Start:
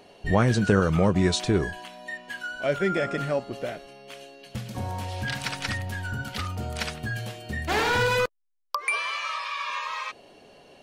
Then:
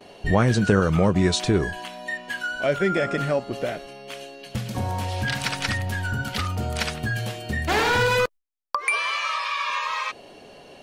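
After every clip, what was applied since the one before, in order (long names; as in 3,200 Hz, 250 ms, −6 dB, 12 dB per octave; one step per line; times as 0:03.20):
noise gate with hold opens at −44 dBFS
in parallel at 0 dB: downward compressor, threshold −30 dBFS, peak gain reduction 14 dB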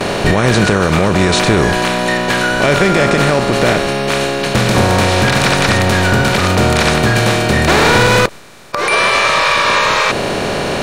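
compressor on every frequency bin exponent 0.4
in parallel at −8.5 dB: hard clipping −8 dBFS, distortion −20 dB
on the sum: boost into a limiter +5 dB
level −1 dB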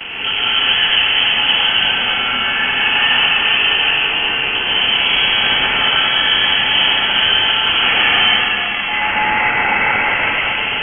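voice inversion scrambler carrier 3,200 Hz
dense smooth reverb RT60 3.7 s, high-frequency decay 0.9×, pre-delay 95 ms, DRR −7 dB
level −10 dB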